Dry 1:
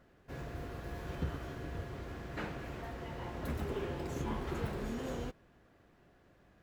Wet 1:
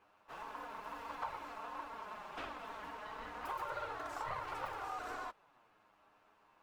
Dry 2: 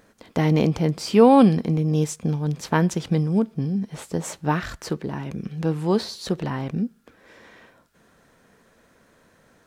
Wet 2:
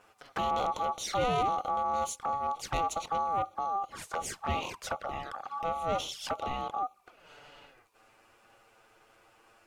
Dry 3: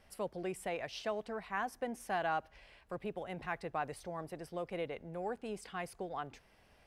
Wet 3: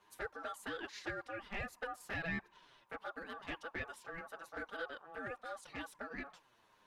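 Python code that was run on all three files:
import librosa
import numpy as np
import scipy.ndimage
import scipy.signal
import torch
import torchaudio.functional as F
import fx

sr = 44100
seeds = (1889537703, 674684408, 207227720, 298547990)

y = 10.0 ** (-20.5 / 20.0) * np.tanh(x / 10.0 ** (-20.5 / 20.0))
y = y * np.sin(2.0 * np.pi * 990.0 * np.arange(len(y)) / sr)
y = fx.env_flanger(y, sr, rest_ms=10.3, full_db=-29.0)
y = y * 10.0 ** (1.5 / 20.0)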